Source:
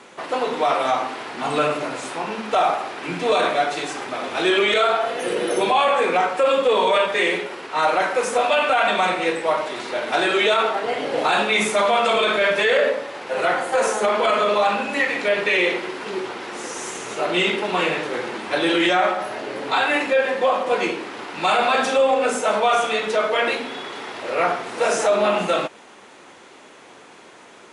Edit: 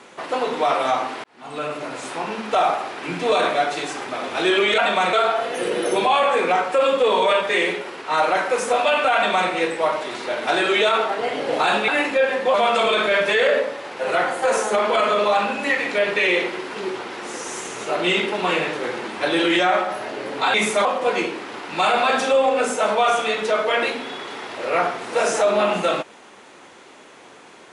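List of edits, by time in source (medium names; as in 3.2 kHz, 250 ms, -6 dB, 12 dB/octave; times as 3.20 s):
1.24–2.16 s: fade in
8.80–9.15 s: copy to 4.78 s
11.53–11.84 s: swap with 19.84–20.50 s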